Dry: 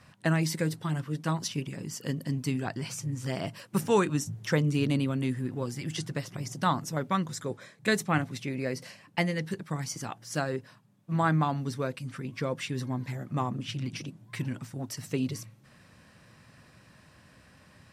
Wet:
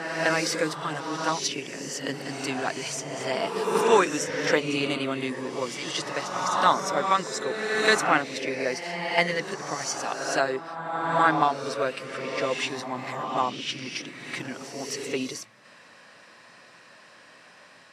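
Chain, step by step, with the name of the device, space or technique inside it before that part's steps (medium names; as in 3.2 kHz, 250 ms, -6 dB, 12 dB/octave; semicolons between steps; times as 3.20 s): ghost voice (reverse; reverberation RT60 2.0 s, pre-delay 12 ms, DRR 2 dB; reverse; high-pass 440 Hz 12 dB/octave); low-pass 7.5 kHz 12 dB/octave; trim +7 dB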